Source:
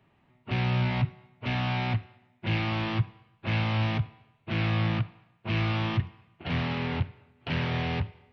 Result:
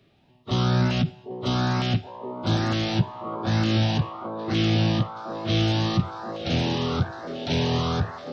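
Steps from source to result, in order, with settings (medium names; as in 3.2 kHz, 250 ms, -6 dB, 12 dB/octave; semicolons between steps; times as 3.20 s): repeats whose band climbs or falls 776 ms, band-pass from 340 Hz, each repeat 0.7 oct, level -1 dB; LFO notch saw up 1.1 Hz 850–2500 Hz; formant shift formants +5 st; trim +5 dB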